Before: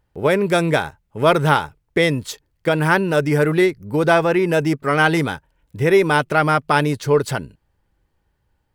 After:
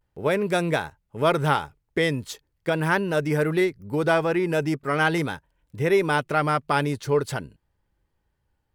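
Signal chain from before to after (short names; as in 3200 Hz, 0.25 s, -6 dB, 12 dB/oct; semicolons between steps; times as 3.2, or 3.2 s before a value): vibrato 0.41 Hz 41 cents; gain -6 dB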